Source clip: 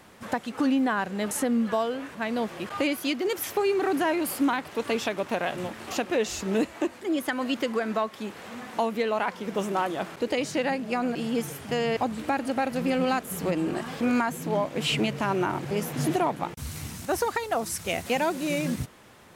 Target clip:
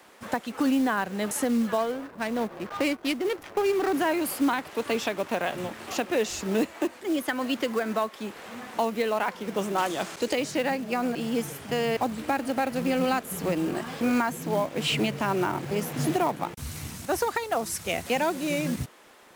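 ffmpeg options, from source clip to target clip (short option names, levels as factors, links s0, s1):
-filter_complex "[0:a]asettb=1/sr,asplit=3[s0][s1][s2];[s0]atrim=end=9.784[s3];[s1]atrim=start=9.78:end=10.33,asetpts=PTS-STARTPTS,afade=t=in:d=0.004:c=qsin,afade=t=out:st=0.546:d=0.004:c=qsin,equalizer=f=6900:w=0.64:g=12[s4];[s2]atrim=start=10.326[s5];[s3][s4]acrossfade=d=0.004:c1=hsin:c2=qsin[s6];[s6][s5]acrossfade=d=0.004:c1=qsin:c2=hsin,acrossover=split=260|1300|2200[s7][s8][s9][s10];[s7]aeval=exprs='sgn(val(0))*max(abs(val(0))-0.00133,0)':c=same[s11];[s11][s8][s9][s10]amix=inputs=4:normalize=0,asettb=1/sr,asplit=3[s12][s13][s14];[s12]atrim=end=1.784[s15];[s13]atrim=start=1.78:end=3.96,asetpts=PTS-STARTPTS,afade=t=in:d=0.004:c=qsin,afade=t=out:st=2.176:d=0.004:c=qsin,adynamicsmooth=sensitivity=6.5:basefreq=530[s16];[s14]atrim=start=3.956[s17];[s15][s16]acrossfade=d=0.004:c1=hsin:c2=qsin[s18];[s18][s17]acrossfade=d=0.004:c1=qsin:c2=hsin,acrusher=bits=5:mode=log:mix=0:aa=0.000001"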